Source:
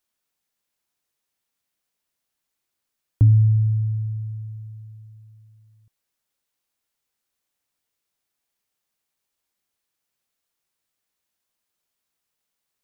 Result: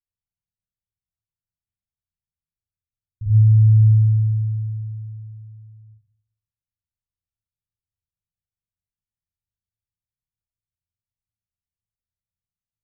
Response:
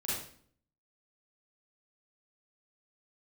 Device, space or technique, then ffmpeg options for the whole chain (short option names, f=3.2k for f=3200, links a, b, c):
club heard from the street: -filter_complex "[0:a]alimiter=limit=-18dB:level=0:latency=1,lowpass=f=130:w=0.5412,lowpass=f=130:w=1.3066[a];[1:a]atrim=start_sample=2205[b];[a][b]afir=irnorm=-1:irlink=0"